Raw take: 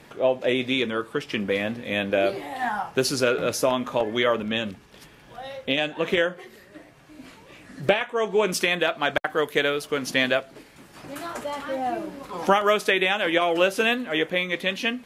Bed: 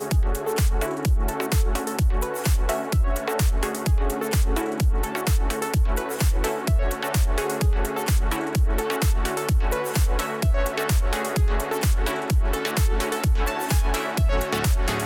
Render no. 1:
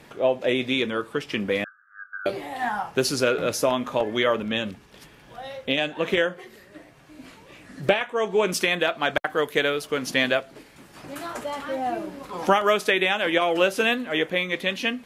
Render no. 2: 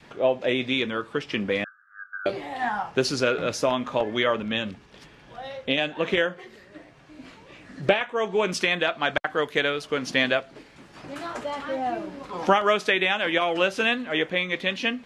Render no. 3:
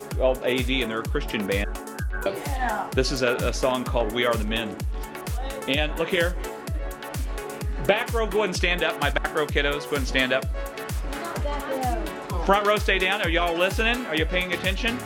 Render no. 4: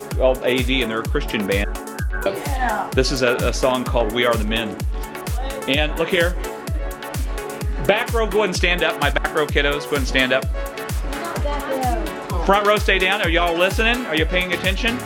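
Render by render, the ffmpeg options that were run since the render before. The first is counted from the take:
-filter_complex "[0:a]asettb=1/sr,asplit=3[a][b][c];[a]atrim=end=1.644[d];[b]atrim=start=1.64:end=2.26,asetpts=PTS-STARTPTS,afade=t=in:d=0.004:c=qsin,afade=t=out:st=0.616:d=0.004:c=qsin,asuperpass=centerf=1400:order=12:qfactor=3.3[e];[c]atrim=start=2.256[f];[d][e]acrossfade=d=0.004:c1=hsin:c2=qsin[g];[g][f]acrossfade=d=0.004:c1=qsin:c2=hsin"
-af "lowpass=6.2k,adynamicequalizer=threshold=0.0251:dfrequency=430:dqfactor=1:tfrequency=430:tqfactor=1:attack=5:release=100:ratio=0.375:range=2:mode=cutabove:tftype=bell"
-filter_complex "[1:a]volume=-8.5dB[a];[0:a][a]amix=inputs=2:normalize=0"
-af "volume=5dB,alimiter=limit=-2dB:level=0:latency=1"

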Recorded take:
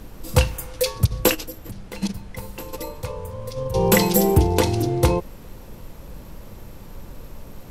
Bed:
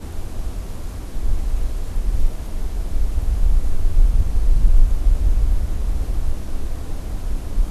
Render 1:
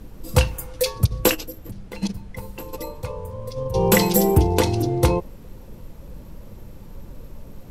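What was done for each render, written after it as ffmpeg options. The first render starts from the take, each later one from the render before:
-af "afftdn=nr=6:nf=-41"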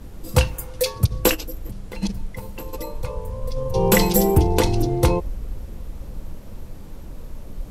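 -filter_complex "[1:a]volume=-13dB[a];[0:a][a]amix=inputs=2:normalize=0"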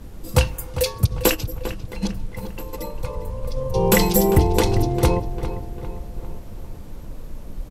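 -filter_complex "[0:a]asplit=2[a][b];[b]adelay=399,lowpass=f=3k:p=1,volume=-11dB,asplit=2[c][d];[d]adelay=399,lowpass=f=3k:p=1,volume=0.52,asplit=2[e][f];[f]adelay=399,lowpass=f=3k:p=1,volume=0.52,asplit=2[g][h];[h]adelay=399,lowpass=f=3k:p=1,volume=0.52,asplit=2[i][j];[j]adelay=399,lowpass=f=3k:p=1,volume=0.52,asplit=2[k][l];[l]adelay=399,lowpass=f=3k:p=1,volume=0.52[m];[a][c][e][g][i][k][m]amix=inputs=7:normalize=0"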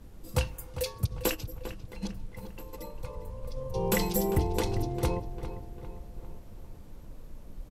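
-af "volume=-11dB"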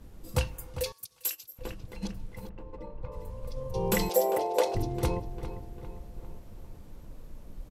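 -filter_complex "[0:a]asettb=1/sr,asplit=3[a][b][c];[a]atrim=end=0.924[d];[b]atrim=start=0.92:end=1.59,asetpts=PTS-STARTPTS,afade=t=in:d=0.004:c=qsin,afade=t=out:st=0.666:d=0.004:c=qsin,aderivative[e];[c]atrim=start=1.586[f];[d][e]acrossfade=d=0.004:c1=hsin:c2=qsin[g];[g][f]acrossfade=d=0.004:c1=qsin:c2=hsin,asettb=1/sr,asplit=3[h][i][j];[h]atrim=end=2.494[k];[i]atrim=start=2.49:end=3.12,asetpts=PTS-STARTPTS,afade=t=in:d=0.004:c=qsin,afade=t=out:st=0.626:d=0.004:c=qsin,adynamicsmooth=sensitivity=2.5:basefreq=1.7k[l];[j]atrim=start=3.116[m];[k][l]acrossfade=d=0.004:c1=hsin:c2=qsin[n];[n][m]acrossfade=d=0.004:c1=qsin:c2=hsin,asettb=1/sr,asplit=3[o][p][q];[o]atrim=end=4.094[r];[p]atrim=start=4.09:end=4.75,asetpts=PTS-STARTPTS,afade=t=in:d=0.004:c=qsin,afade=t=out:st=0.656:d=0.004:c=qsin,highpass=f=570:t=q:w=6.2[s];[q]atrim=start=4.746[t];[r][s]acrossfade=d=0.004:c1=hsin:c2=qsin[u];[u][t]acrossfade=d=0.004:c1=qsin:c2=hsin"

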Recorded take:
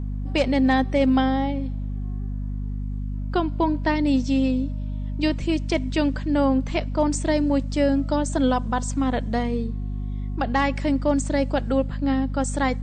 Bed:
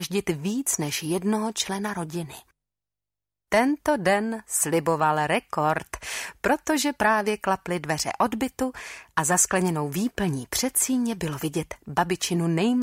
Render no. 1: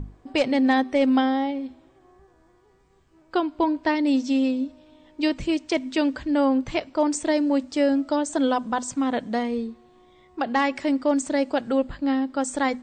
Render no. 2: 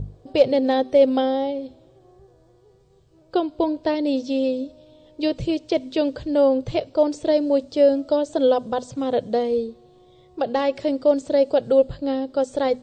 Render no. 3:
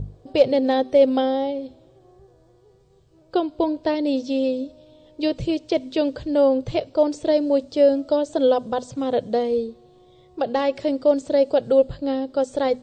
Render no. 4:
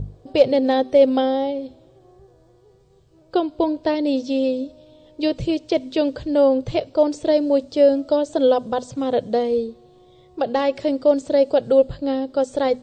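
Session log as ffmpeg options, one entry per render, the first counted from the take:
-af "bandreject=f=50:t=h:w=6,bandreject=f=100:t=h:w=6,bandreject=f=150:t=h:w=6,bandreject=f=200:t=h:w=6,bandreject=f=250:t=h:w=6"
-filter_complex "[0:a]equalizer=f=125:t=o:w=1:g=12,equalizer=f=250:t=o:w=1:g=-8,equalizer=f=500:t=o:w=1:g=12,equalizer=f=1k:t=o:w=1:g=-6,equalizer=f=2k:t=o:w=1:g=-9,equalizer=f=4k:t=o:w=1:g=6,acrossover=split=4600[a][b];[b]acompressor=threshold=-52dB:ratio=4:attack=1:release=60[c];[a][c]amix=inputs=2:normalize=0"
-af anull
-af "volume=1.5dB"

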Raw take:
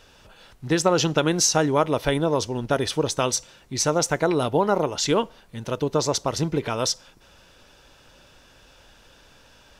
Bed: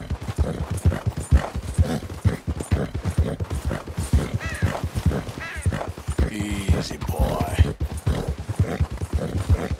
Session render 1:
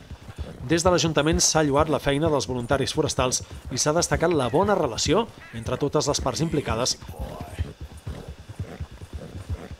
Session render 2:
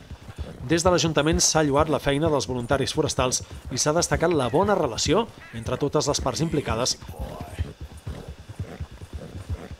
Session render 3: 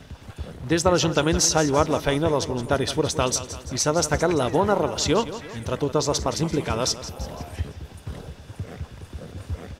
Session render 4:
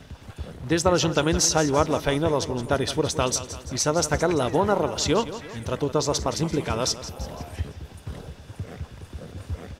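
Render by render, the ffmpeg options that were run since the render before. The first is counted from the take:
-filter_complex "[1:a]volume=-12dB[a];[0:a][a]amix=inputs=2:normalize=0"
-af anull
-af "aecho=1:1:169|338|507|676|845:0.211|0.108|0.055|0.028|0.0143"
-af "volume=-1dB"

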